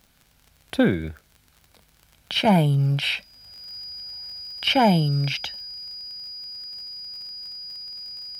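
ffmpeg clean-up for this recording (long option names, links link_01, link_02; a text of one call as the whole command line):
ffmpeg -i in.wav -af "adeclick=threshold=4,bandreject=frequency=4900:width=30" out.wav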